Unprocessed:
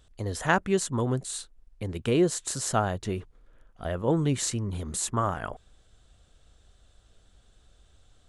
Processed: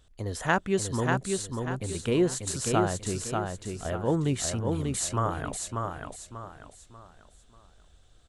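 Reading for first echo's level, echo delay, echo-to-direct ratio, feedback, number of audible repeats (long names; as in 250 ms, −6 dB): −4.0 dB, 590 ms, −3.5 dB, 35%, 4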